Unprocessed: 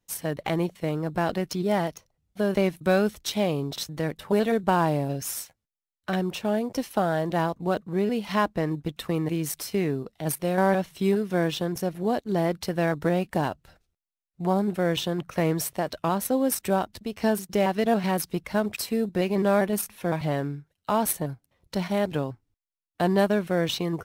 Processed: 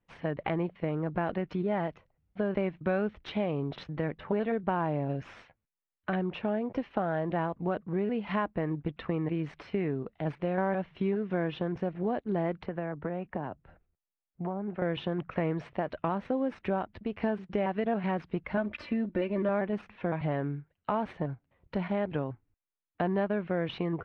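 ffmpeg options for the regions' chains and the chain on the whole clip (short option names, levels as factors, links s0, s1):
-filter_complex "[0:a]asettb=1/sr,asplit=3[s0][s1][s2];[s0]atrim=end=12.634[s3];[s1]atrim=start=12.63:end=14.82,asetpts=PTS-STARTPTS,afade=t=in:d=0.004:c=qsin,afade=t=out:st=2.186:d=0.004:c=qsin,lowpass=f=1400:p=1,acrossover=split=120|560[s4][s5][s6];[s4]acompressor=threshold=0.00251:ratio=4[s7];[s5]acompressor=threshold=0.0178:ratio=4[s8];[s6]acompressor=threshold=0.0141:ratio=4[s9];[s7][s8][s9]amix=inputs=3:normalize=0[s10];[s2]atrim=start=14.816[s11];[s3][s10]acrossfade=d=0.004:c1=hsin:c2=qsin[s12];[s12][s11]acrossfade=d=0.004:c1=qsin:c2=hsin,asettb=1/sr,asplit=3[s13][s14][s15];[s13]atrim=end=18.574[s16];[s14]atrim=start=18.57:end=19.49,asetpts=PTS-STARTPTS,afade=t=in:d=0.004:c=qsin,afade=t=out:st=0.916:d=0.004:c=qsin,bandreject=f=810:w=5.7,aecho=1:1:3.4:0.66,atrim=end_sample=40572[s17];[s15]atrim=start=19.486[s18];[s16][s17]acrossfade=d=0.004:c1=hsin:c2=qsin[s19];[s19][s18]acrossfade=d=0.004:c1=qsin:c2=hsin,lowpass=f=2600:w=0.5412,lowpass=f=2600:w=1.3066,acompressor=threshold=0.0355:ratio=2.5"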